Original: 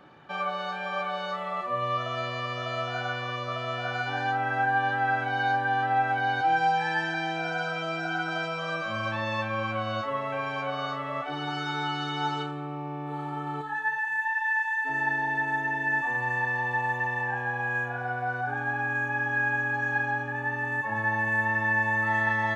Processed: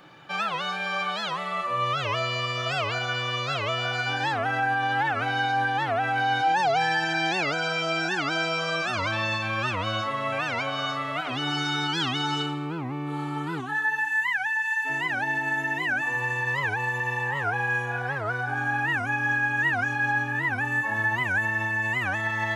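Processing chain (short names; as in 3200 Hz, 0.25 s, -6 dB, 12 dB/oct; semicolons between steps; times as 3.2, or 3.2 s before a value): high shelf 2400 Hz +12 dB; limiter -18.5 dBFS, peak gain reduction 6.5 dB; on a send at -6 dB: reverb RT60 1.4 s, pre-delay 6 ms; on the sum: record warp 78 rpm, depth 250 cents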